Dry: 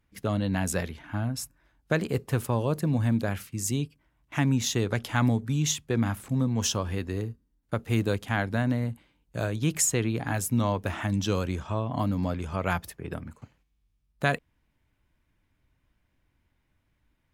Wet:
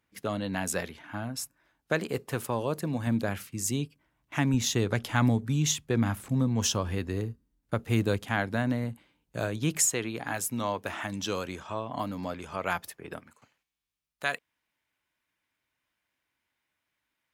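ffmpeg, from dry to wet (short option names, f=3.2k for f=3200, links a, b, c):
-af "asetnsamples=n=441:p=0,asendcmd='3.07 highpass f 140;4.54 highpass f 43;8.25 highpass f 150;9.88 highpass f 470;13.2 highpass f 1300',highpass=f=310:p=1"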